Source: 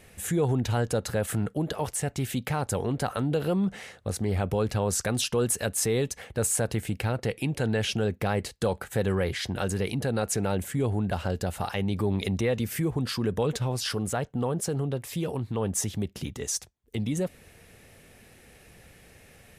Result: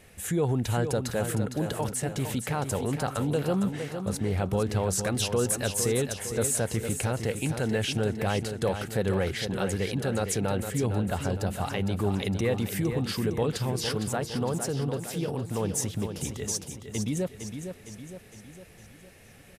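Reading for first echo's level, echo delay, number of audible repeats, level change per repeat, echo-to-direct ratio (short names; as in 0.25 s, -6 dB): -8.0 dB, 0.459 s, 5, -5.5 dB, -6.5 dB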